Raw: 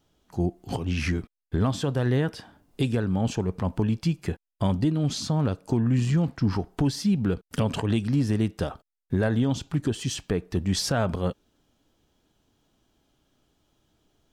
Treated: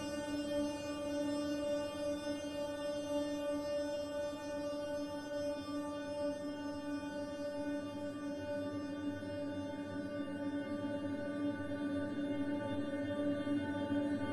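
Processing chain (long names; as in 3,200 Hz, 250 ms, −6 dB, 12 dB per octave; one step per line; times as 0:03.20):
pitch vibrato 0.45 Hz 21 cents
stiff-string resonator 290 Hz, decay 0.79 s, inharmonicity 0.002
extreme stretch with random phases 32×, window 1.00 s, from 0:08.69
level +14 dB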